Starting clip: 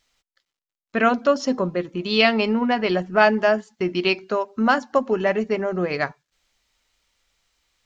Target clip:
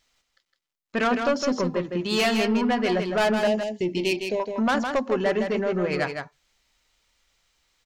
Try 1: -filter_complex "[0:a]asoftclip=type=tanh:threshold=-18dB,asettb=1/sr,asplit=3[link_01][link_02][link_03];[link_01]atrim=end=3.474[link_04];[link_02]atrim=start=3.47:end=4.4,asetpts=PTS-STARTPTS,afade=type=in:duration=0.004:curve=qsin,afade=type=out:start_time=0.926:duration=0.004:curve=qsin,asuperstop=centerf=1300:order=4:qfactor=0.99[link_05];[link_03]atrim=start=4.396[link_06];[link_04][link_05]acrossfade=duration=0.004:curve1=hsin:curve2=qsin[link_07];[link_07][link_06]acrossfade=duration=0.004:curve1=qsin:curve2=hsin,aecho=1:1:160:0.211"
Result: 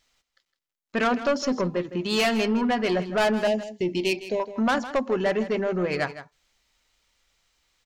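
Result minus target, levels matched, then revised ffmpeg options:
echo-to-direct −7.5 dB
-filter_complex "[0:a]asoftclip=type=tanh:threshold=-18dB,asettb=1/sr,asplit=3[link_01][link_02][link_03];[link_01]atrim=end=3.474[link_04];[link_02]atrim=start=3.47:end=4.4,asetpts=PTS-STARTPTS,afade=type=in:duration=0.004:curve=qsin,afade=type=out:start_time=0.926:duration=0.004:curve=qsin,asuperstop=centerf=1300:order=4:qfactor=0.99[link_05];[link_03]atrim=start=4.396[link_06];[link_04][link_05]acrossfade=duration=0.004:curve1=hsin:curve2=qsin[link_07];[link_07][link_06]acrossfade=duration=0.004:curve1=qsin:curve2=hsin,aecho=1:1:160:0.501"

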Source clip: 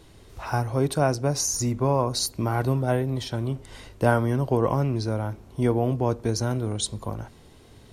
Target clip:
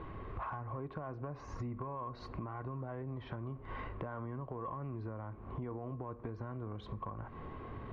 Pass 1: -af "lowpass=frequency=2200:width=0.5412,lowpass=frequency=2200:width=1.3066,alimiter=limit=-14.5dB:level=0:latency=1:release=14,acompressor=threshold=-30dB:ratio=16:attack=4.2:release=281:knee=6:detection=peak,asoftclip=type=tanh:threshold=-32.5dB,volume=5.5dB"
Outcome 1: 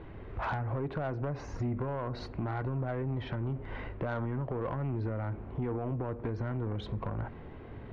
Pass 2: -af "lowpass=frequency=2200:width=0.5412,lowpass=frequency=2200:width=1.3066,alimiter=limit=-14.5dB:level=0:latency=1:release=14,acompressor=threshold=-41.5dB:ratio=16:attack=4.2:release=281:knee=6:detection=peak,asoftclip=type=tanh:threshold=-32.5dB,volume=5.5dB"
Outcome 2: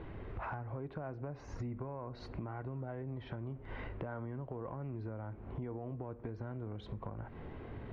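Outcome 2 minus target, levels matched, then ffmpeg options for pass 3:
1,000 Hz band −3.5 dB
-af "lowpass=frequency=2200:width=0.5412,lowpass=frequency=2200:width=1.3066,equalizer=frequency=1100:width=7.3:gain=15,alimiter=limit=-14.5dB:level=0:latency=1:release=14,acompressor=threshold=-41.5dB:ratio=16:attack=4.2:release=281:knee=6:detection=peak,asoftclip=type=tanh:threshold=-32.5dB,volume=5.5dB"

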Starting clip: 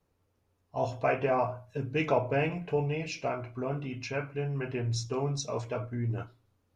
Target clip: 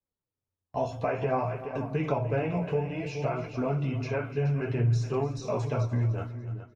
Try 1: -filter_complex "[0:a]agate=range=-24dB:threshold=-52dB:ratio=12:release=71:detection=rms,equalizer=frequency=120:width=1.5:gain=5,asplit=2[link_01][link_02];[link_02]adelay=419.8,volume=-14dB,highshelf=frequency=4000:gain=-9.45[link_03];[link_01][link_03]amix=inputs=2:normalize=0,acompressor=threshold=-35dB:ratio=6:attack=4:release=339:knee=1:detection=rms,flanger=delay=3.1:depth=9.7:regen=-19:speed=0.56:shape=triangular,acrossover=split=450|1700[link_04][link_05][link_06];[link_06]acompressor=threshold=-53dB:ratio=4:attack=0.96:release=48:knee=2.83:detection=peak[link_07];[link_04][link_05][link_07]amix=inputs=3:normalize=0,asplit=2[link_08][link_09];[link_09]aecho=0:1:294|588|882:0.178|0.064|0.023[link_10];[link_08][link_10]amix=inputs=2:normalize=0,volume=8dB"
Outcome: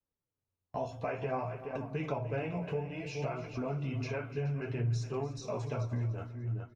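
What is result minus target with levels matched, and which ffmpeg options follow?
downward compressor: peak gain reduction +7 dB
-filter_complex "[0:a]agate=range=-24dB:threshold=-52dB:ratio=12:release=71:detection=rms,equalizer=frequency=120:width=1.5:gain=5,asplit=2[link_01][link_02];[link_02]adelay=419.8,volume=-14dB,highshelf=frequency=4000:gain=-9.45[link_03];[link_01][link_03]amix=inputs=2:normalize=0,acompressor=threshold=-26.5dB:ratio=6:attack=4:release=339:knee=1:detection=rms,flanger=delay=3.1:depth=9.7:regen=-19:speed=0.56:shape=triangular,acrossover=split=450|1700[link_04][link_05][link_06];[link_06]acompressor=threshold=-53dB:ratio=4:attack=0.96:release=48:knee=2.83:detection=peak[link_07];[link_04][link_05][link_07]amix=inputs=3:normalize=0,asplit=2[link_08][link_09];[link_09]aecho=0:1:294|588|882:0.178|0.064|0.023[link_10];[link_08][link_10]amix=inputs=2:normalize=0,volume=8dB"

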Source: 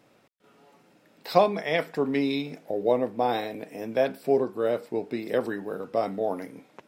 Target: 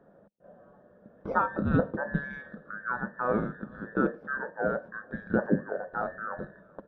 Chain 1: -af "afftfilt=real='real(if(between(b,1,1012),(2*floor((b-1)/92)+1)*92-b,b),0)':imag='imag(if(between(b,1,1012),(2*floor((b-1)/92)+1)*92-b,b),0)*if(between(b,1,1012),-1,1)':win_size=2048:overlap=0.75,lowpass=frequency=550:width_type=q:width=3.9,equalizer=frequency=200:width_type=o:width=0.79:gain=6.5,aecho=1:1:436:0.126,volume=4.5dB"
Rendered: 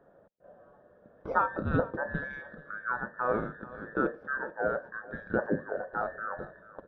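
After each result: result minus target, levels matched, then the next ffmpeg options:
echo-to-direct +10 dB; 250 Hz band −3.5 dB
-af "afftfilt=real='real(if(between(b,1,1012),(2*floor((b-1)/92)+1)*92-b,b),0)':imag='imag(if(between(b,1,1012),(2*floor((b-1)/92)+1)*92-b,b),0)*if(between(b,1,1012),-1,1)':win_size=2048:overlap=0.75,lowpass=frequency=550:width_type=q:width=3.9,equalizer=frequency=200:width_type=o:width=0.79:gain=6.5,aecho=1:1:436:0.0398,volume=4.5dB"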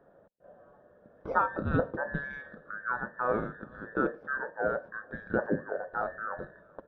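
250 Hz band −3.5 dB
-af "afftfilt=real='real(if(between(b,1,1012),(2*floor((b-1)/92)+1)*92-b,b),0)':imag='imag(if(between(b,1,1012),(2*floor((b-1)/92)+1)*92-b,b),0)*if(between(b,1,1012),-1,1)':win_size=2048:overlap=0.75,lowpass=frequency=550:width_type=q:width=3.9,equalizer=frequency=200:width_type=o:width=0.79:gain=15.5,aecho=1:1:436:0.0398,volume=4.5dB"

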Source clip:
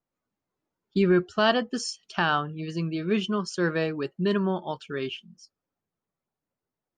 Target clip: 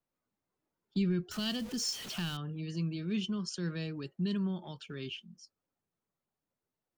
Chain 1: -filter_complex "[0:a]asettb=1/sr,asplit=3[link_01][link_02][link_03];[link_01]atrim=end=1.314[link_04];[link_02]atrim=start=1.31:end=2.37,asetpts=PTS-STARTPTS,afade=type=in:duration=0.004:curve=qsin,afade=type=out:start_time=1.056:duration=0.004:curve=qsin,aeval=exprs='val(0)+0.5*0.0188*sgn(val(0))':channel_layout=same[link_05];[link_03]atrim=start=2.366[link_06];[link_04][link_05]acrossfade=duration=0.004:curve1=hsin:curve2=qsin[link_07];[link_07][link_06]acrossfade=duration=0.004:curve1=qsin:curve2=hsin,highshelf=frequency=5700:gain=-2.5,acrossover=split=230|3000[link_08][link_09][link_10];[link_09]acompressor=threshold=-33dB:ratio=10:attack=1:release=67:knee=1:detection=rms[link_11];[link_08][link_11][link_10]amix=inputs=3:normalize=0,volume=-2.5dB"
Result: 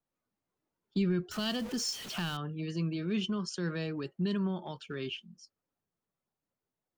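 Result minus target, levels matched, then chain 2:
downward compressor: peak gain reduction −7 dB
-filter_complex "[0:a]asettb=1/sr,asplit=3[link_01][link_02][link_03];[link_01]atrim=end=1.314[link_04];[link_02]atrim=start=1.31:end=2.37,asetpts=PTS-STARTPTS,afade=type=in:duration=0.004:curve=qsin,afade=type=out:start_time=1.056:duration=0.004:curve=qsin,aeval=exprs='val(0)+0.5*0.0188*sgn(val(0))':channel_layout=same[link_05];[link_03]atrim=start=2.366[link_06];[link_04][link_05]acrossfade=duration=0.004:curve1=hsin:curve2=qsin[link_07];[link_07][link_06]acrossfade=duration=0.004:curve1=qsin:curve2=hsin,highshelf=frequency=5700:gain=-2.5,acrossover=split=230|3000[link_08][link_09][link_10];[link_09]acompressor=threshold=-41dB:ratio=10:attack=1:release=67:knee=1:detection=rms[link_11];[link_08][link_11][link_10]amix=inputs=3:normalize=0,volume=-2.5dB"

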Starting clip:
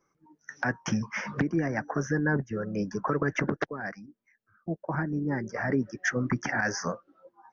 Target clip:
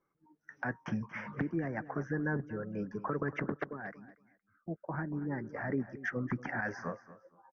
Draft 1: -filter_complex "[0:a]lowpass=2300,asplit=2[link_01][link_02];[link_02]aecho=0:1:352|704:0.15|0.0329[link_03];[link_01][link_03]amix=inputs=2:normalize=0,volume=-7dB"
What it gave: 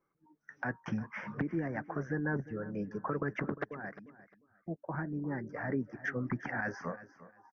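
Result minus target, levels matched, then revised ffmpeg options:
echo 119 ms late
-filter_complex "[0:a]lowpass=2300,asplit=2[link_01][link_02];[link_02]aecho=0:1:233|466:0.15|0.0329[link_03];[link_01][link_03]amix=inputs=2:normalize=0,volume=-7dB"

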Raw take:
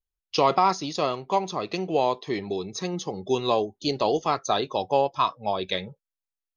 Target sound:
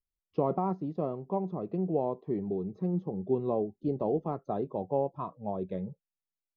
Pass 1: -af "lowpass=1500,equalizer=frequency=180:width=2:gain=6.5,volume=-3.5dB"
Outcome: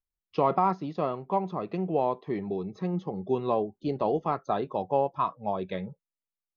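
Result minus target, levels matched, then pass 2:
2,000 Hz band +13.5 dB
-af "lowpass=530,equalizer=frequency=180:width=2:gain=6.5,volume=-3.5dB"

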